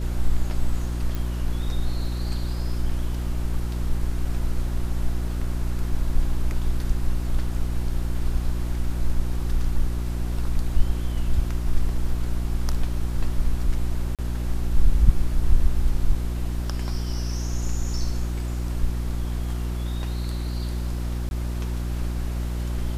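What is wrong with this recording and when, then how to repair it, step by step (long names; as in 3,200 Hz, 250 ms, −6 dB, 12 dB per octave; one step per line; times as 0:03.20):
mains hum 60 Hz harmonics 6 −27 dBFS
0:01.15: click
0:14.15–0:14.19: drop-out 37 ms
0:21.29–0:21.31: drop-out 21 ms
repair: click removal
hum removal 60 Hz, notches 6
repair the gap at 0:14.15, 37 ms
repair the gap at 0:21.29, 21 ms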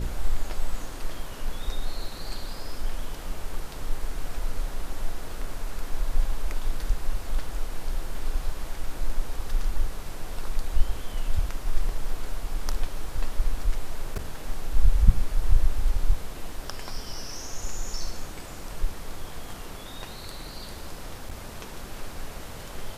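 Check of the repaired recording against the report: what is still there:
none of them is left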